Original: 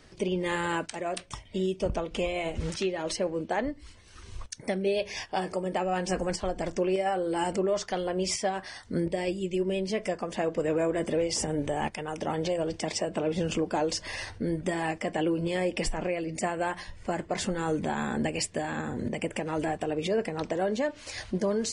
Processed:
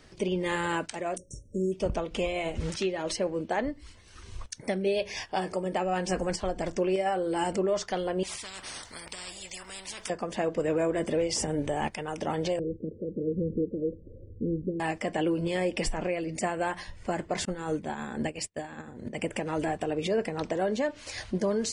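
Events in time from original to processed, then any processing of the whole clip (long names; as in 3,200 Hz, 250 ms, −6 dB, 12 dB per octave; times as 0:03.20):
0:01.17–0:01.72: time-frequency box erased 590–5,500 Hz
0:08.23–0:10.10: every bin compressed towards the loudest bin 10 to 1
0:12.59–0:14.80: Butterworth low-pass 520 Hz 96 dB per octave
0:17.45–0:19.15: downward expander −26 dBFS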